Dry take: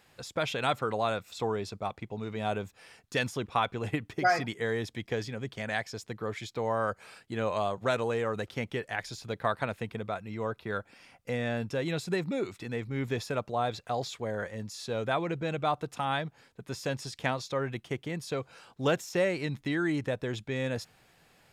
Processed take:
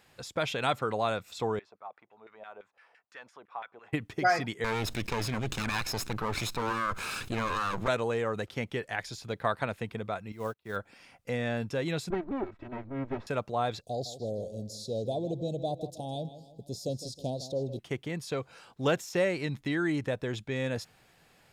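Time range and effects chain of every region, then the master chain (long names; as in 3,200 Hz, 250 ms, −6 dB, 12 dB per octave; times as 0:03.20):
0:01.59–0:03.93: low-shelf EQ 140 Hz −10.5 dB + downward compressor 1.5 to 1, threshold −44 dBFS + auto-filter band-pass saw down 5.9 Hz 560–2,000 Hz
0:04.64–0:07.88: lower of the sound and its delayed copy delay 0.77 ms + envelope flattener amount 70%
0:10.32–0:10.76: high-shelf EQ 9,900 Hz +10.5 dB + log-companded quantiser 6 bits + expander for the loud parts 2.5 to 1, over −48 dBFS
0:12.10–0:13.27: lower of the sound and its delayed copy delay 3.1 ms + low-pass filter 1,400 Hz
0:13.81–0:17.79: elliptic band-stop filter 650–4,000 Hz, stop band 60 dB + feedback echo with a low-pass in the loop 158 ms, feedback 45%, low-pass 4,600 Hz, level −13 dB
whole clip: no processing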